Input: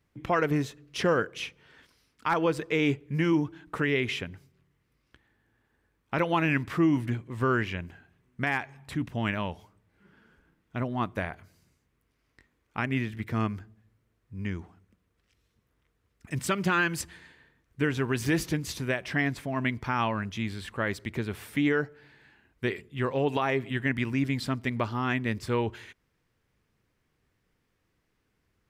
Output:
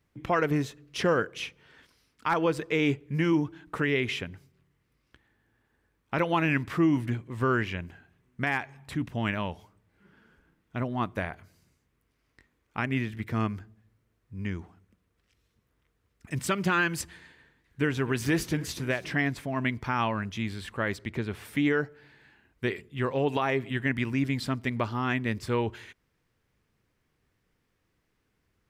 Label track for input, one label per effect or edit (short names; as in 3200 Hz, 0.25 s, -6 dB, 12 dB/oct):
17.130000	19.150000	warbling echo 0.26 s, feedback 67%, depth 152 cents, level -19 dB
20.960000	21.450000	high shelf 9300 Hz -10.5 dB